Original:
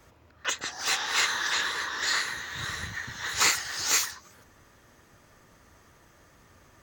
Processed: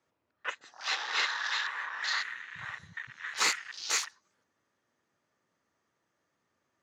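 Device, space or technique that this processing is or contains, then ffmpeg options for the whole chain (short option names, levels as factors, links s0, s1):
over-cleaned archive recording: -af "highpass=170,lowpass=7300,afwtdn=0.0224,volume=0.668"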